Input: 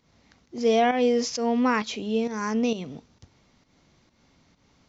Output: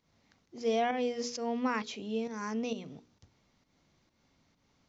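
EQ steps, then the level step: notches 60/120/180/240/300/360/420/480 Hz; -8.5 dB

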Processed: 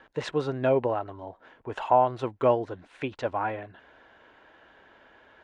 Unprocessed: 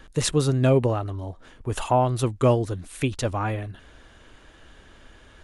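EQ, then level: band-pass 1000 Hz, Q 0.85; air absorption 100 m; notch 1200 Hz, Q 7; +2.5 dB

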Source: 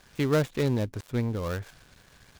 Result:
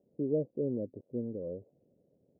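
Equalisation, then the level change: HPF 230 Hz 12 dB/oct; elliptic low-pass 560 Hz, stop band 60 dB; -3.5 dB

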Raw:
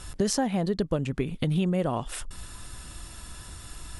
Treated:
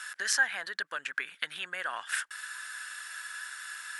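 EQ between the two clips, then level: resonant high-pass 1600 Hz, resonance Q 8.1; 0.0 dB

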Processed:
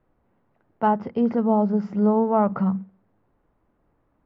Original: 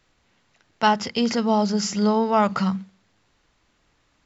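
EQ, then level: LPF 1000 Hz 12 dB/oct; tilt -2 dB/oct; low shelf 140 Hz -11 dB; 0.0 dB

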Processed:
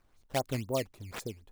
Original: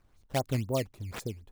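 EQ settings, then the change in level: bell 80 Hz -6.5 dB 2.9 oct; 0.0 dB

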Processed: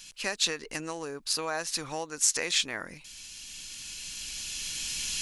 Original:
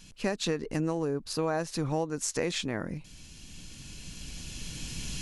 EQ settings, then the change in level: tilt shelf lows -9 dB; bell 130 Hz -5.5 dB 2 oct; 0.0 dB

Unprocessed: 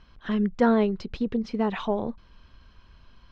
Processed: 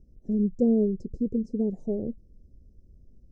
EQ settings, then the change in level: inverse Chebyshev band-stop 1000–3700 Hz, stop band 50 dB; high shelf 4300 Hz -4 dB; 0.0 dB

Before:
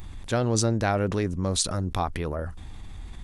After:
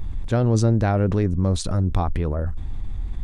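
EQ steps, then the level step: tilt -2.5 dB/oct; 0.0 dB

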